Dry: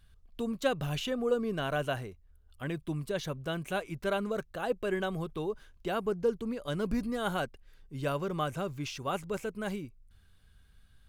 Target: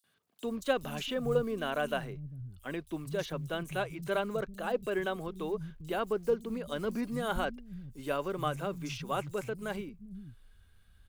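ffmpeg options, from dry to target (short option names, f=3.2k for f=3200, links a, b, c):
-filter_complex "[0:a]acrusher=bits=8:mode=log:mix=0:aa=0.000001,acrossover=split=180|5200[a][b][c];[b]adelay=40[d];[a]adelay=440[e];[e][d][c]amix=inputs=3:normalize=0"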